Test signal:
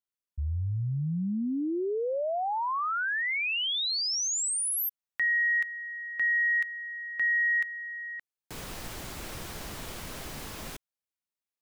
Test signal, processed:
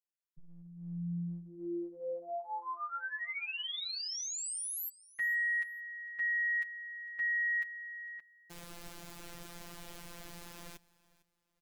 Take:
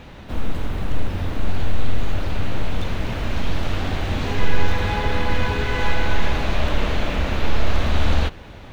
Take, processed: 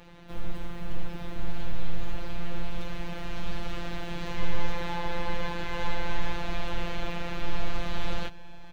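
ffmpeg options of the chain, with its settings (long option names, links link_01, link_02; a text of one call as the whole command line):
ffmpeg -i in.wav -af "afftfilt=real='hypot(re,im)*cos(PI*b)':imag='0':win_size=1024:overlap=0.75,aecho=1:1:454|908:0.0794|0.0222,volume=-6dB" out.wav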